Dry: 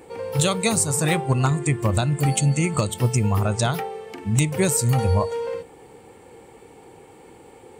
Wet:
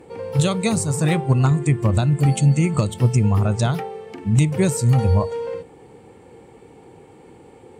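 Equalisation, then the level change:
high-frequency loss of the air 57 metres
parametric band 150 Hz +6.5 dB 2.8 octaves
high-shelf EQ 12,000 Hz +11.5 dB
−2.0 dB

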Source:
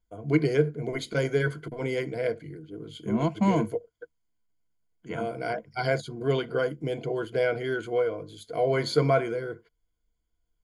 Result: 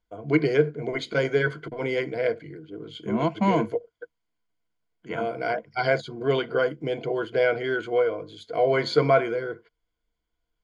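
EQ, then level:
low-pass filter 4,300 Hz 12 dB per octave
low-shelf EQ 230 Hz −9.5 dB
+5.0 dB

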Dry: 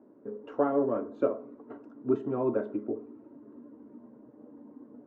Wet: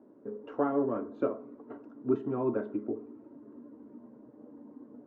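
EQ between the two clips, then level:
dynamic equaliser 560 Hz, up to −5 dB, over −41 dBFS, Q 2.2
high-frequency loss of the air 74 metres
0.0 dB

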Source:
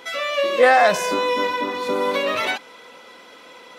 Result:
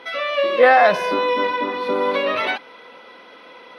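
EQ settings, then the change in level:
moving average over 6 samples
high-pass filter 150 Hz 6 dB per octave
+2.0 dB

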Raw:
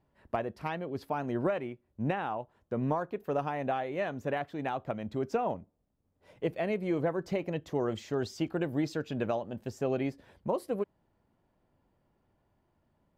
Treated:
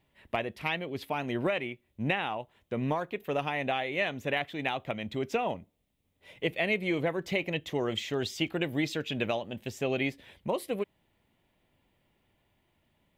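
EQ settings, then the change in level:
flat-topped bell 2,700 Hz +11.5 dB 1.2 octaves
high-shelf EQ 5,900 Hz +10.5 dB
0.0 dB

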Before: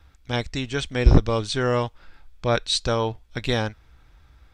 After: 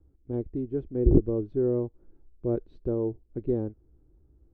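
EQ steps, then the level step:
low-pass with resonance 360 Hz, resonance Q 4.1
−7.5 dB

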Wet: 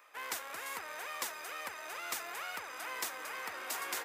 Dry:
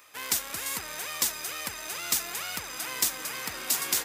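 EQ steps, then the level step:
high-pass filter 47 Hz
three-way crossover with the lows and the highs turned down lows −18 dB, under 390 Hz, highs −13 dB, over 2,300 Hz
−1.5 dB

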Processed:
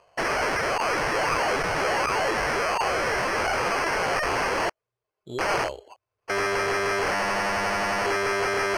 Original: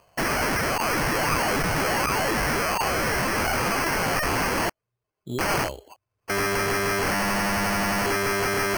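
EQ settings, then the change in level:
high-frequency loss of the air 64 metres
low shelf with overshoot 330 Hz −7 dB, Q 1.5
0.0 dB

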